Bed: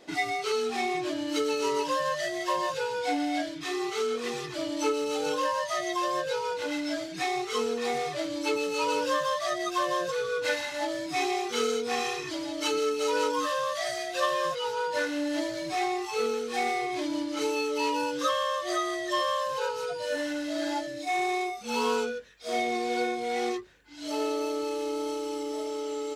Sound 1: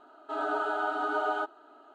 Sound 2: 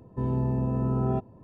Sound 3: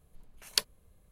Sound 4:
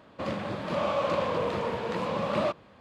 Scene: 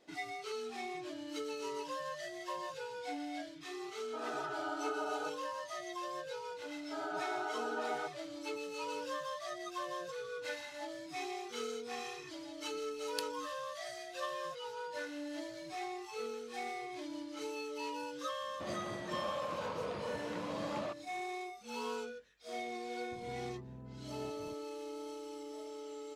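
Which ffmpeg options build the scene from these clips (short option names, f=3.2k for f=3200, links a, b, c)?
-filter_complex "[1:a]asplit=2[a][b];[0:a]volume=-13dB[c];[b]bandreject=f=1.2k:w=11[d];[3:a]highpass=50[e];[4:a]alimiter=limit=-20.5dB:level=0:latency=1:release=71[f];[2:a]acompressor=threshold=-46dB:ratio=6:attack=3.2:release=140:knee=1:detection=peak[g];[a]atrim=end=1.94,asetpts=PTS-STARTPTS,volume=-10dB,afade=t=in:d=0.004:c=hsin,afade=t=out:st=1.936:d=0.004:c=hsin,adelay=3840[h];[d]atrim=end=1.94,asetpts=PTS-STARTPTS,volume=-8.5dB,afade=t=in:d=0.004:c=hsin,afade=t=out:st=1.936:d=0.004:c=hsin,adelay=6620[i];[e]atrim=end=1.11,asetpts=PTS-STARTPTS,volume=-14dB,afade=t=in:d=0.004:c=hsin,afade=t=out:st=1.106:d=0.004:c=hsin,adelay=12610[j];[f]atrim=end=2.8,asetpts=PTS-STARTPTS,volume=-11dB,afade=t=in:d=0.004:c=hsin,afade=t=out:st=2.796:d=0.004:c=hsin,adelay=18410[k];[g]atrim=end=1.43,asetpts=PTS-STARTPTS,volume=-2.5dB,afade=t=in:d=0.004:c=hsin,afade=t=out:st=1.426:d=0.004:c=hsin,adelay=23110[l];[c][h][i][j][k][l]amix=inputs=6:normalize=0"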